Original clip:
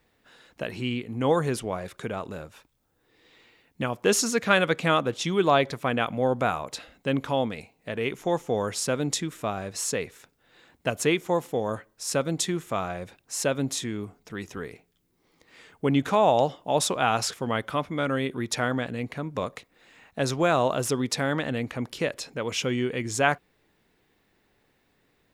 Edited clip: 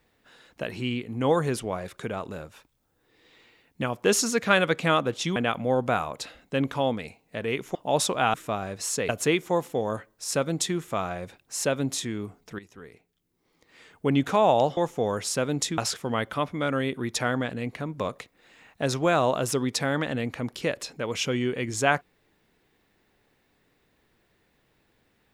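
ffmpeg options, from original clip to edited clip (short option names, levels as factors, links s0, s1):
-filter_complex "[0:a]asplit=8[s0][s1][s2][s3][s4][s5][s6][s7];[s0]atrim=end=5.362[s8];[s1]atrim=start=5.888:end=8.282[s9];[s2]atrim=start=16.558:end=17.152[s10];[s3]atrim=start=9.288:end=10.042[s11];[s4]atrim=start=10.878:end=14.38,asetpts=PTS-STARTPTS,afade=t=out:st=3.498:d=0.004:c=hsin:silence=0.199526[s12];[s5]atrim=start=14.38:end=16.562,asetpts=PTS-STARTPTS,afade=t=in:d=1.52:silence=0.199526[s13];[s6]atrim=start=8.278:end=9.292[s14];[s7]atrim=start=17.148[s15];[s8][s9]acrossfade=d=0.004:c1=hsin:c2=hsin[s16];[s16][s10]acrossfade=d=0.004:c1=hsin:c2=hsin[s17];[s17][s11]acrossfade=d=0.004:c1=hsin:c2=hsin[s18];[s12][s13]concat=n=2:v=0:a=1[s19];[s18][s19]acrossfade=d=0.004:c1=hsin:c2=hsin[s20];[s20][s14]acrossfade=d=0.004:c1=hsin:c2=hsin[s21];[s21][s15]acrossfade=d=0.004:c1=hsin:c2=hsin"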